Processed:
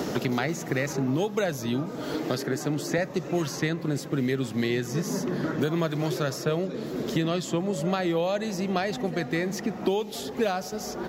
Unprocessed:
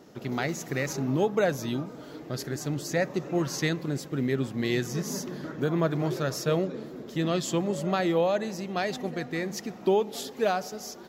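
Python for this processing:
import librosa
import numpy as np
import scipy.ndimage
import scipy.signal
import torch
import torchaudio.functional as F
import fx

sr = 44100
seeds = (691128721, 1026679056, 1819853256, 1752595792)

y = fx.highpass(x, sr, hz=160.0, slope=12, at=(2.14, 2.98))
y = fx.band_squash(y, sr, depth_pct=100)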